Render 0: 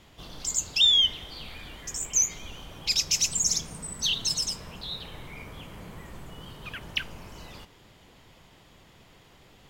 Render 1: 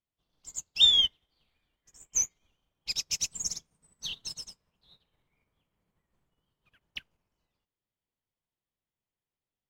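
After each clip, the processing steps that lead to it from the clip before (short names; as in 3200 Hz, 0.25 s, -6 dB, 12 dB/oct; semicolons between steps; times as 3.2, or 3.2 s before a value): upward expander 2.5:1, over -45 dBFS; gain +1.5 dB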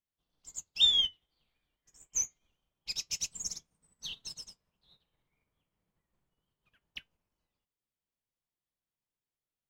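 flange 0.27 Hz, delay 3.5 ms, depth 3.3 ms, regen -81%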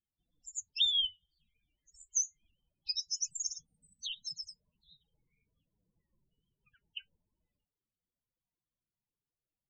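loudest bins only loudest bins 16; compressor, threshold -31 dBFS, peak gain reduction 11 dB; gain +4 dB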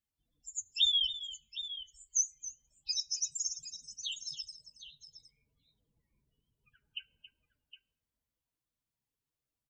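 notch comb 180 Hz; on a send: tapped delay 0.275/0.763 s -13.5/-13 dB; on the sum: plate-style reverb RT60 1.6 s, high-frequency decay 0.3×, DRR 18 dB; gain +2.5 dB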